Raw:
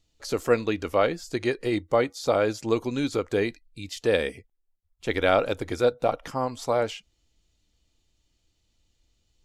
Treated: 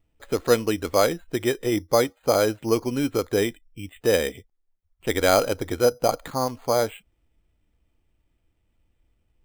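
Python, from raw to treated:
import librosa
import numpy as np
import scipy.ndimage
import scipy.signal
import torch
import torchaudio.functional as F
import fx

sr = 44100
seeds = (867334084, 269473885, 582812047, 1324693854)

y = np.repeat(scipy.signal.resample_poly(x, 1, 8), 8)[:len(x)]
y = F.gain(torch.from_numpy(y), 2.5).numpy()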